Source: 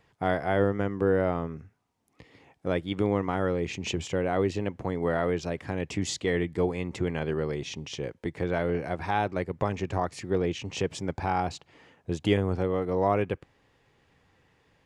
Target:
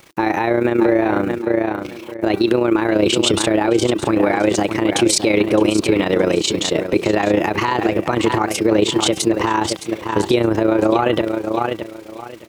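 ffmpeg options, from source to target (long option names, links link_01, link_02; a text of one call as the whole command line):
ffmpeg -i in.wav -filter_complex "[0:a]lowshelf=frequency=490:gain=-8.5,bandreject=frequency=327.1:width_type=h:width=4,bandreject=frequency=654.2:width_type=h:width=4,bandreject=frequency=981.3:width_type=h:width=4,bandreject=frequency=1308.4:width_type=h:width=4,bandreject=frequency=1635.5:width_type=h:width=4,bandreject=frequency=1962.6:width_type=h:width=4,bandreject=frequency=2289.7:width_type=h:width=4,bandreject=frequency=2616.8:width_type=h:width=4,bandreject=frequency=2943.9:width_type=h:width=4,bandreject=frequency=3271:width_type=h:width=4,bandreject=frequency=3598.1:width_type=h:width=4,bandreject=frequency=3925.2:width_type=h:width=4,bandreject=frequency=4252.3:width_type=h:width=4,bandreject=frequency=4579.4:width_type=h:width=4,acrusher=bits=10:mix=0:aa=0.000001,equalizer=frequency=280:width_type=o:width=0.38:gain=15,asetrate=52479,aresample=44100,tremolo=f=29:d=0.71,asplit=2[link_01][link_02];[link_02]aecho=0:1:615|1230|1845:0.251|0.0553|0.0122[link_03];[link_01][link_03]amix=inputs=2:normalize=0,alimiter=level_in=25.5dB:limit=-1dB:release=50:level=0:latency=1,volume=-4dB" out.wav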